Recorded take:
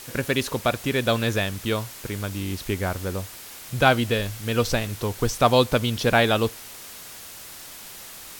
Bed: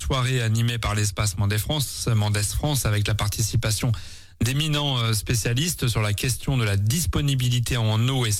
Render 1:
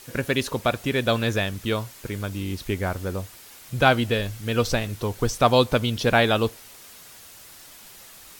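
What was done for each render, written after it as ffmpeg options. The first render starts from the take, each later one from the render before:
-af "afftdn=nr=6:nf=-41"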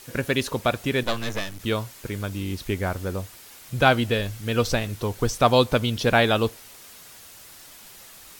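-filter_complex "[0:a]asettb=1/sr,asplit=3[a][b][c];[a]atrim=end=1.034[d];[b]atrim=start=1.03:end=1.6,asetpts=PTS-STARTPTS,afade=t=in:d=0.004:c=qsin,afade=t=out:st=0.566:d=0.004:c=qsin,aeval=exprs='max(val(0),0)':c=same[e];[c]atrim=start=1.596[f];[d][e]acrossfade=d=0.004:c1=hsin:c2=qsin[g];[g][f]acrossfade=d=0.004:c1=qsin:c2=hsin"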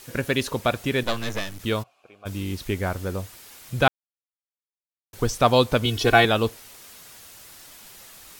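-filter_complex "[0:a]asplit=3[a][b][c];[a]afade=t=out:st=1.82:d=0.02[d];[b]asplit=3[e][f][g];[e]bandpass=f=730:t=q:w=8,volume=0dB[h];[f]bandpass=f=1.09k:t=q:w=8,volume=-6dB[i];[g]bandpass=f=2.44k:t=q:w=8,volume=-9dB[j];[h][i][j]amix=inputs=3:normalize=0,afade=t=in:st=1.82:d=0.02,afade=t=out:st=2.25:d=0.02[k];[c]afade=t=in:st=2.25:d=0.02[l];[d][k][l]amix=inputs=3:normalize=0,asettb=1/sr,asplit=3[m][n][o];[m]atrim=end=5.854[p];[n]atrim=start=5.85:end=6.25,asetpts=PTS-STARTPTS,afade=t=in:d=0.004:c=qsin,afade=t=out:st=0.396:d=0.004:c=qsin,aecho=1:1:2.7:0.96,atrim=end_sample=17640[q];[o]atrim=start=6.246[r];[p][q]acrossfade=d=0.004:c1=hsin:c2=qsin[s];[s][r]acrossfade=d=0.004:c1=qsin:c2=hsin,asplit=3[t][u][v];[t]atrim=end=3.88,asetpts=PTS-STARTPTS,afade=t=out:st=3.876:d=0.004:c=hsin[w];[u]atrim=start=3.88:end=5.13,asetpts=PTS-STARTPTS,volume=0[x];[v]atrim=start=5.13,asetpts=PTS-STARTPTS,afade=t=in:d=0.004:c=hsin[y];[w][x][y]concat=n=3:v=0:a=1"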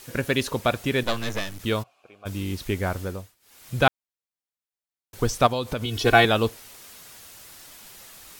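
-filter_complex "[0:a]asplit=3[a][b][c];[a]afade=t=out:st=5.46:d=0.02[d];[b]acompressor=threshold=-24dB:ratio=4:attack=3.2:release=140:knee=1:detection=peak,afade=t=in:st=5.46:d=0.02,afade=t=out:st=6.04:d=0.02[e];[c]afade=t=in:st=6.04:d=0.02[f];[d][e][f]amix=inputs=3:normalize=0,asplit=3[g][h][i];[g]atrim=end=3.35,asetpts=PTS-STARTPTS,afade=t=out:st=3:d=0.35:silence=0.0707946[j];[h]atrim=start=3.35:end=3.4,asetpts=PTS-STARTPTS,volume=-23dB[k];[i]atrim=start=3.4,asetpts=PTS-STARTPTS,afade=t=in:d=0.35:silence=0.0707946[l];[j][k][l]concat=n=3:v=0:a=1"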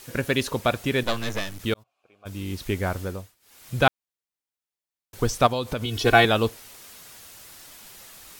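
-filter_complex "[0:a]asplit=2[a][b];[a]atrim=end=1.74,asetpts=PTS-STARTPTS,afade=t=out:st=1.736:d=0.004:c=hsin[c];[b]atrim=start=1.74,asetpts=PTS-STARTPTS,afade=t=in:d=0.94[d];[c][d]concat=n=2:v=0:a=1"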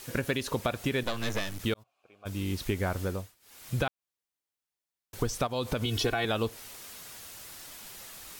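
-af "alimiter=limit=-12.5dB:level=0:latency=1:release=196,acompressor=threshold=-25dB:ratio=6"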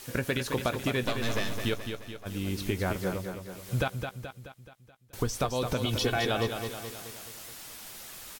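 -filter_complex "[0:a]asplit=2[a][b];[b]adelay=16,volume=-12.5dB[c];[a][c]amix=inputs=2:normalize=0,aecho=1:1:214|428|642|856|1070|1284:0.447|0.237|0.125|0.0665|0.0352|0.0187"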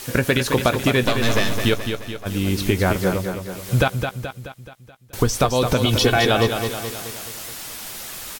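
-af "volume=11dB,alimiter=limit=-3dB:level=0:latency=1"

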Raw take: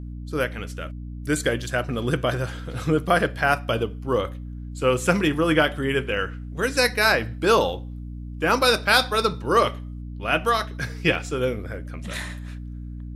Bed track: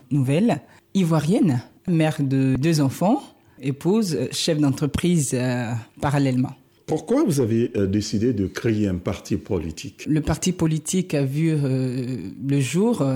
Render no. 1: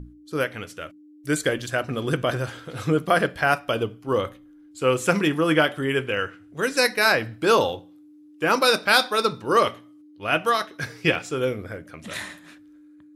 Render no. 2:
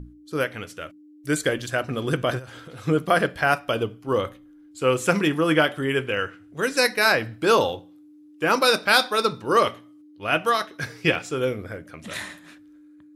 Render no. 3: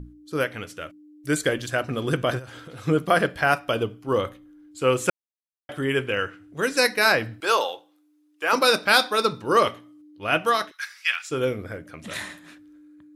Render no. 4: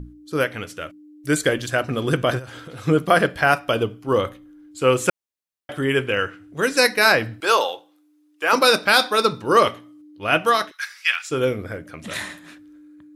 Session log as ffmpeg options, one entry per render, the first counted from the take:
-af "bandreject=f=60:t=h:w=6,bandreject=f=120:t=h:w=6,bandreject=f=180:t=h:w=6,bandreject=f=240:t=h:w=6"
-filter_complex "[0:a]asplit=3[a][b][c];[a]afade=t=out:st=2.38:d=0.02[d];[b]acompressor=threshold=-36dB:ratio=10:attack=3.2:release=140:knee=1:detection=peak,afade=t=in:st=2.38:d=0.02,afade=t=out:st=2.86:d=0.02[e];[c]afade=t=in:st=2.86:d=0.02[f];[d][e][f]amix=inputs=3:normalize=0"
-filter_complex "[0:a]asettb=1/sr,asplit=3[a][b][c];[a]atrim=end=7.404[d];[b]atrim=start=7.4:end=8.53,asetpts=PTS-STARTPTS,afade=t=in:d=0.004:c=qsin,afade=t=out:st=1.126:d=0.004:c=qsin,highpass=630[e];[c]atrim=start=8.526[f];[d][e]acrossfade=d=0.004:c1=hsin:c2=qsin[g];[g][f]acrossfade=d=0.004:c1=qsin:c2=hsin,asplit=3[h][i][j];[h]afade=t=out:st=10.7:d=0.02[k];[i]highpass=f=1.3k:w=0.5412,highpass=f=1.3k:w=1.3066,afade=t=in:st=10.7:d=0.02,afade=t=out:st=11.3:d=0.02[l];[j]afade=t=in:st=11.3:d=0.02[m];[k][l][m]amix=inputs=3:normalize=0,asplit=3[n][o][p];[n]atrim=end=5.1,asetpts=PTS-STARTPTS,afade=t=out:st=5.096:d=0.004:c=hsin[q];[o]atrim=start=5.1:end=5.69,asetpts=PTS-STARTPTS,volume=0[r];[p]atrim=start=5.69,asetpts=PTS-STARTPTS,afade=t=in:d=0.004:c=hsin[s];[q][r][s]concat=n=3:v=0:a=1"
-af "volume=3.5dB,alimiter=limit=-3dB:level=0:latency=1"

